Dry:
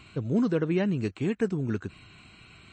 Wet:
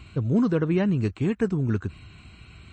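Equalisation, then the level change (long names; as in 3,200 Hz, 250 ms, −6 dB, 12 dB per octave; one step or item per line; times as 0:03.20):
dynamic equaliser 1,100 Hz, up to +5 dB, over −47 dBFS, Q 1.6
parametric band 63 Hz +9.5 dB 1.2 octaves
low-shelf EQ 240 Hz +5 dB
0.0 dB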